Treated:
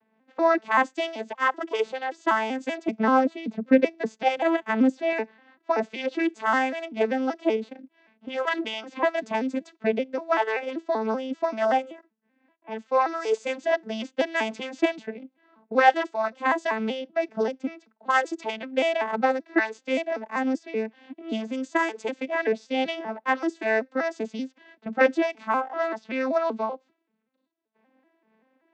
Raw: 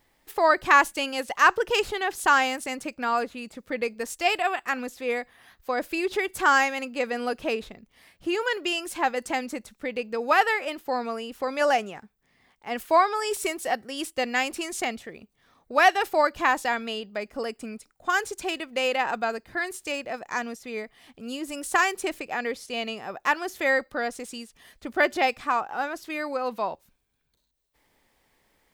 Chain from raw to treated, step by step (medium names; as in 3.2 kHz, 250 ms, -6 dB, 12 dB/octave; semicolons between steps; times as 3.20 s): vocoder on a broken chord minor triad, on A3, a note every 192 ms; level-controlled noise filter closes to 2.3 kHz, open at -23.5 dBFS; dynamic bell 220 Hz, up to -4 dB, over -41 dBFS, Q 0.86; gain riding within 4 dB 0.5 s; 2.88–5.13 s: bass shelf 500 Hz +7 dB; random flutter of the level, depth 60%; trim +5 dB